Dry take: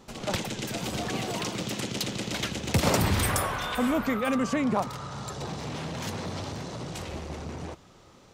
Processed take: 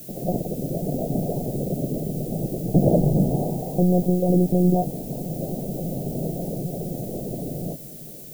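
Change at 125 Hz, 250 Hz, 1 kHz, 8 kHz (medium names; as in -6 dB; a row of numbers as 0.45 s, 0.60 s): +9.0 dB, +7.5 dB, -2.0 dB, -6.5 dB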